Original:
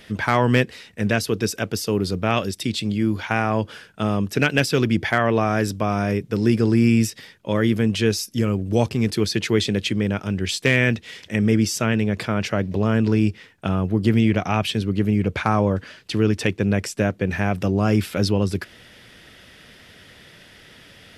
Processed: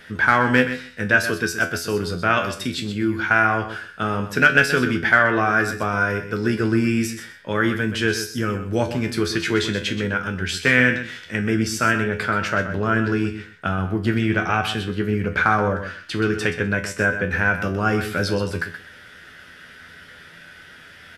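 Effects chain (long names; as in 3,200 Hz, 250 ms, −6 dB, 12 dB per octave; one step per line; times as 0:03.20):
parametric band 1,500 Hz +14.5 dB 0.53 octaves
tuned comb filter 84 Hz, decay 0.3 s, harmonics all, mix 80%
repeating echo 126 ms, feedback 15%, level −10.5 dB
level +5 dB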